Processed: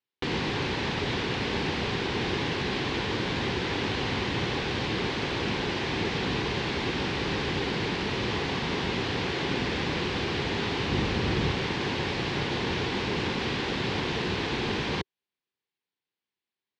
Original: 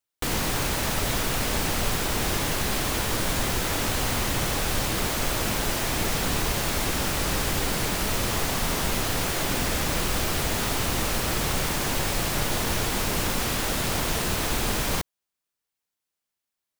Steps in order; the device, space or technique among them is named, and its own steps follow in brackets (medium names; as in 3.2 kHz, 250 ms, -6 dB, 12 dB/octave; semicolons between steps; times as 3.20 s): 10.90–11.51 s: bass shelf 200 Hz +8 dB; guitar cabinet (cabinet simulation 95–4200 Hz, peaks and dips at 390 Hz +5 dB, 630 Hz -9 dB, 1.3 kHz -7 dB)